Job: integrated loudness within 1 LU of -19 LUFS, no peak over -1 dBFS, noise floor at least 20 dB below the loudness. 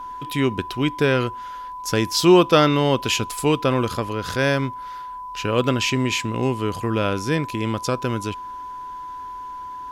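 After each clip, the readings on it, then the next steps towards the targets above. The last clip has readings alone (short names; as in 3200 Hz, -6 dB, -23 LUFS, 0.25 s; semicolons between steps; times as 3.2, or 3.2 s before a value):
steady tone 1000 Hz; tone level -31 dBFS; loudness -21.0 LUFS; peak -2.5 dBFS; loudness target -19.0 LUFS
-> notch 1000 Hz, Q 30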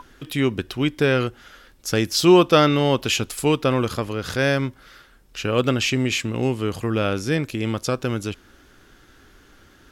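steady tone none; loudness -21.5 LUFS; peak -2.5 dBFS; loudness target -19.0 LUFS
-> gain +2.5 dB; limiter -1 dBFS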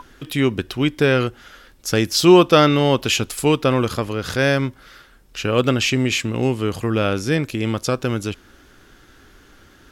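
loudness -19.0 LUFS; peak -1.0 dBFS; noise floor -50 dBFS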